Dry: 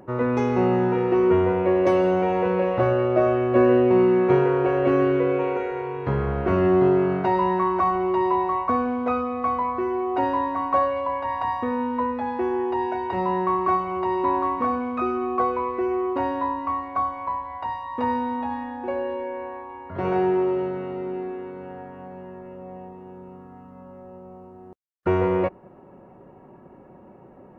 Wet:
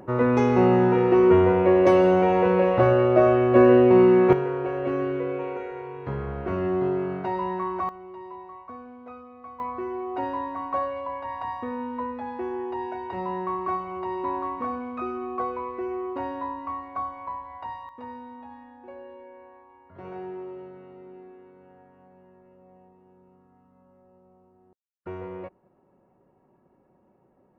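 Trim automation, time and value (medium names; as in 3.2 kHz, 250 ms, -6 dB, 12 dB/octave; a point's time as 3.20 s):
+2 dB
from 4.33 s -7 dB
from 7.89 s -19 dB
from 9.60 s -6.5 dB
from 17.89 s -15.5 dB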